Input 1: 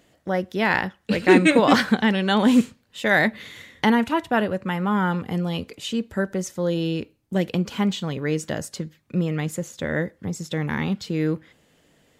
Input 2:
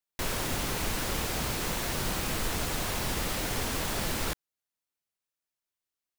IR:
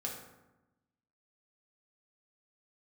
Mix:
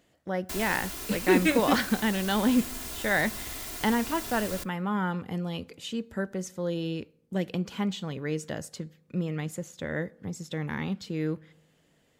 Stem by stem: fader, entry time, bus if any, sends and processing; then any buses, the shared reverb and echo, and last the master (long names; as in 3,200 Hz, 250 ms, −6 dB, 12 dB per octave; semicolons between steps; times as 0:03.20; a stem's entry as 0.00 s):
−7.5 dB, 0.00 s, send −22.5 dB, no processing
−2.5 dB, 0.30 s, send −22.5 dB, lower of the sound and its delayed copy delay 2.9 ms; high-shelf EQ 5,200 Hz +8.5 dB; automatic ducking −7 dB, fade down 0.95 s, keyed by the first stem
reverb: on, RT60 1.0 s, pre-delay 3 ms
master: no processing